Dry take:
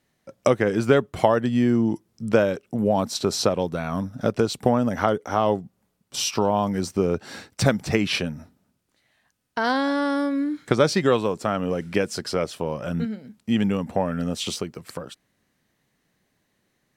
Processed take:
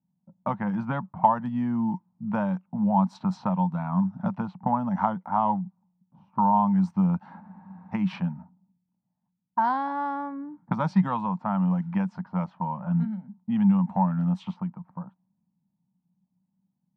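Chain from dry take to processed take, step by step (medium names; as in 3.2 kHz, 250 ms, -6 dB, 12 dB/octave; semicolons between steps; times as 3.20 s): two resonant band-passes 410 Hz, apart 2.3 oct; level-controlled noise filter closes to 330 Hz, open at -29.5 dBFS; spectral freeze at 7.42 s, 0.51 s; trim +8 dB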